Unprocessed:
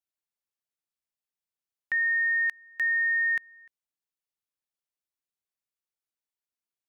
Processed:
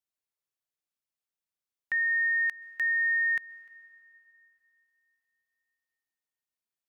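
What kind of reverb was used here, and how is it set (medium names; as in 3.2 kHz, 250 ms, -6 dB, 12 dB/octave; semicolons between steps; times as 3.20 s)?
plate-style reverb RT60 3.5 s, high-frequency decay 0.8×, pre-delay 115 ms, DRR 19 dB; trim -1.5 dB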